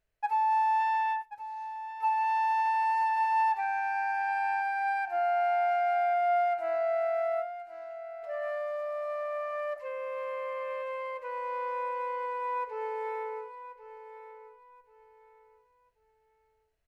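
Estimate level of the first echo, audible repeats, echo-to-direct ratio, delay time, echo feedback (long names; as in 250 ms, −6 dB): −13.0 dB, 2, −12.5 dB, 1,083 ms, 27%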